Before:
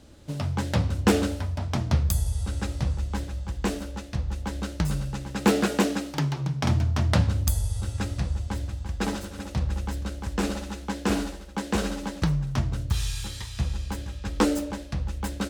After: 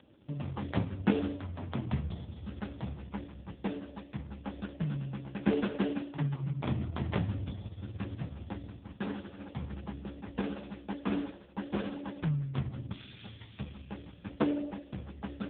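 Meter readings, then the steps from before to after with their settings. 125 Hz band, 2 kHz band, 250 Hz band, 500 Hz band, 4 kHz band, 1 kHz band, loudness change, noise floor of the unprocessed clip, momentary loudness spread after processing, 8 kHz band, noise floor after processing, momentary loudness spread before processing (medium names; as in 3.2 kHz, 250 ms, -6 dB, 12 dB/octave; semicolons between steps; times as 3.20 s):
-9.5 dB, -10.5 dB, -6.0 dB, -8.0 dB, -14.0 dB, -10.5 dB, -9.0 dB, -40 dBFS, 12 LU, under -40 dB, -53 dBFS, 10 LU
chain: trim -4.5 dB; AMR-NB 4.75 kbps 8 kHz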